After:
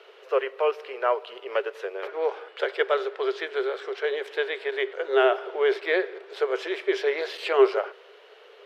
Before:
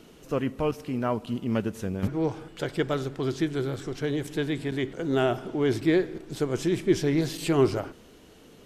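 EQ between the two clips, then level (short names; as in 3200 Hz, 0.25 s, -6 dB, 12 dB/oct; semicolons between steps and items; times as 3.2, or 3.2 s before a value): rippled Chebyshev high-pass 390 Hz, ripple 3 dB; air absorption 380 m; high shelf 2600 Hz +10 dB; +7.5 dB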